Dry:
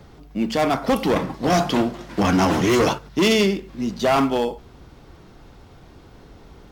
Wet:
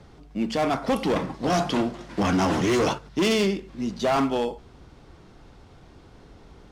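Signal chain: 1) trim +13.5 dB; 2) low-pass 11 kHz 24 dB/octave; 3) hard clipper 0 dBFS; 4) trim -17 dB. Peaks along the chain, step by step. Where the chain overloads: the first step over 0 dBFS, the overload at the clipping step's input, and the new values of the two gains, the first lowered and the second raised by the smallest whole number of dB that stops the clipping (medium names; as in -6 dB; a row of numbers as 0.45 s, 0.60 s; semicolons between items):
+6.0 dBFS, +6.5 dBFS, 0.0 dBFS, -17.0 dBFS; step 1, 6.5 dB; step 1 +6.5 dB, step 4 -10 dB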